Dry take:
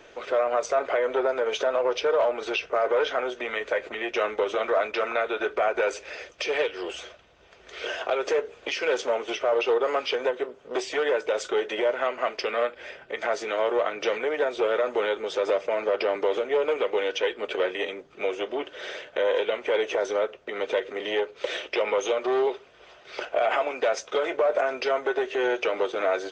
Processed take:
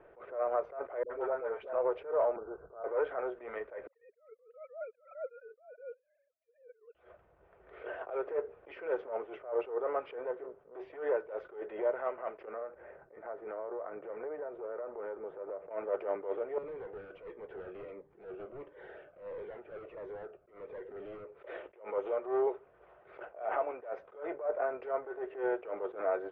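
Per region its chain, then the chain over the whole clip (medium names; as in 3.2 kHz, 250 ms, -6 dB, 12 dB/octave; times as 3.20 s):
1.03–1.73 s: peaking EQ 350 Hz -3.5 dB 1.8 oct + phase dispersion highs, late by 76 ms, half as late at 590 Hz
2.36–2.84 s: Chebyshev low-pass 1.5 kHz, order 6 + bass shelf 220 Hz +8 dB + compression 4:1, threshold -32 dBFS
3.87–6.95 s: formants replaced by sine waves + gate -36 dBFS, range -22 dB + treble shelf 2.2 kHz -8.5 dB
12.45–15.71 s: low-pass 1.7 kHz + compression 10:1, threshold -29 dBFS
16.58–21.32 s: overload inside the chain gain 33.5 dB + Shepard-style phaser falling 1.5 Hz
whole clip: Bessel low-pass 1.1 kHz, order 4; peaking EQ 250 Hz -10 dB 0.34 oct; attacks held to a fixed rise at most 150 dB/s; trim -5 dB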